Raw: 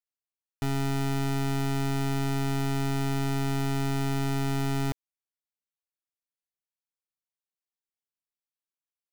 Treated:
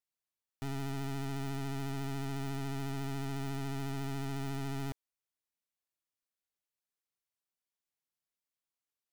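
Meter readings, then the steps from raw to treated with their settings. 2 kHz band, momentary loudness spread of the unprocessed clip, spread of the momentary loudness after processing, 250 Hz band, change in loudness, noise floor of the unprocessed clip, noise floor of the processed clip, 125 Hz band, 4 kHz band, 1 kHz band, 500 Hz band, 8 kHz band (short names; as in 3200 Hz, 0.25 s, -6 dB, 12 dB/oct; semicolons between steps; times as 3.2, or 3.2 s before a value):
-9.5 dB, 2 LU, 2 LU, -9.5 dB, -9.5 dB, under -85 dBFS, under -85 dBFS, -9.5 dB, -9.5 dB, -9.5 dB, -9.5 dB, -10.0 dB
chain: vibrato 14 Hz 36 cents; soft clip -36.5 dBFS, distortion -30 dB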